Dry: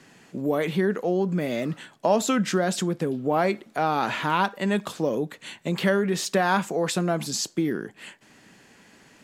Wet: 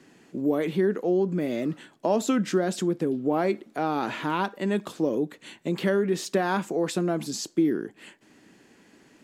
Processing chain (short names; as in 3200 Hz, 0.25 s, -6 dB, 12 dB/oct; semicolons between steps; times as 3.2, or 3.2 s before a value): bell 320 Hz +9 dB 1 oct; gain -5.5 dB